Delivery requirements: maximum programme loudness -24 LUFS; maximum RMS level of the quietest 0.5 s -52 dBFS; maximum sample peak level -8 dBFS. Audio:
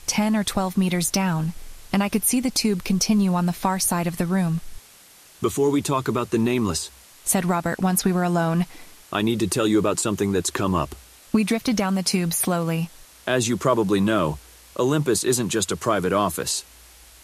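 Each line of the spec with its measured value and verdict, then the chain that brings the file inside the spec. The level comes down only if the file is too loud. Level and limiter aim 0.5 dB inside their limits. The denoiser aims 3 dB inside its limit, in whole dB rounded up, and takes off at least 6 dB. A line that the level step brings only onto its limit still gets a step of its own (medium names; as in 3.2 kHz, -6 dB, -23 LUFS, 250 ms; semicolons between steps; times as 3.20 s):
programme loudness -22.5 LUFS: fail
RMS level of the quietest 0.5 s -50 dBFS: fail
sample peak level -7.0 dBFS: fail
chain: noise reduction 6 dB, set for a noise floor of -50 dBFS; trim -2 dB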